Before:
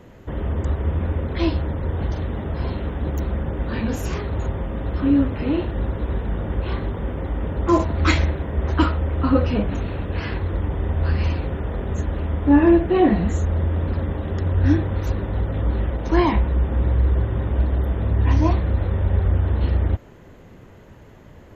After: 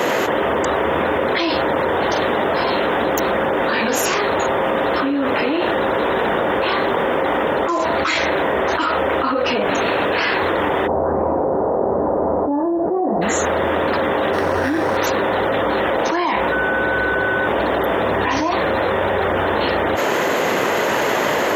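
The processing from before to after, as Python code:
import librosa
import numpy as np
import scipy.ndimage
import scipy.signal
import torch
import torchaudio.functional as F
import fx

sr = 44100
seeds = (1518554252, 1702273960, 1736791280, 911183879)

y = fx.cheby2_lowpass(x, sr, hz=3100.0, order=4, stop_db=60, at=(10.86, 13.21), fade=0.02)
y = fx.resample_linear(y, sr, factor=6, at=(14.33, 14.97))
y = fx.dmg_tone(y, sr, hz=1500.0, level_db=-36.0, at=(16.51, 17.46), fade=0.02)
y = scipy.signal.sosfilt(scipy.signal.butter(2, 530.0, 'highpass', fs=sr, output='sos'), y)
y = fx.env_flatten(y, sr, amount_pct=100)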